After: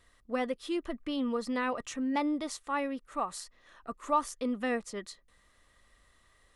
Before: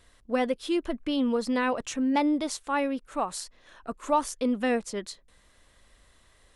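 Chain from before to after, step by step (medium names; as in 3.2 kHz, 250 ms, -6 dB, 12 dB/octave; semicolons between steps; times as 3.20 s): small resonant body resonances 1.2/1.9 kHz, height 9 dB, ringing for 30 ms; trim -6 dB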